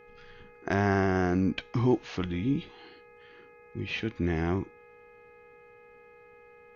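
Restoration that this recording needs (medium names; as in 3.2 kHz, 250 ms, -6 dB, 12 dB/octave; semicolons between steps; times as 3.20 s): de-hum 418.8 Hz, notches 6; band-stop 480 Hz, Q 30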